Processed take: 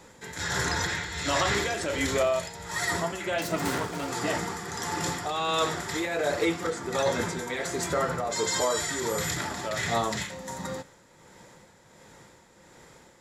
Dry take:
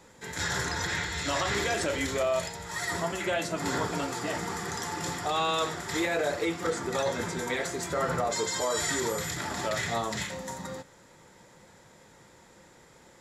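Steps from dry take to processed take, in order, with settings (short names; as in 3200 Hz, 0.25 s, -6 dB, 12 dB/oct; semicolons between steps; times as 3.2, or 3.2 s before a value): 3.38–4.09 self-modulated delay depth 0.13 ms; tremolo 1.4 Hz, depth 51%; gain +4 dB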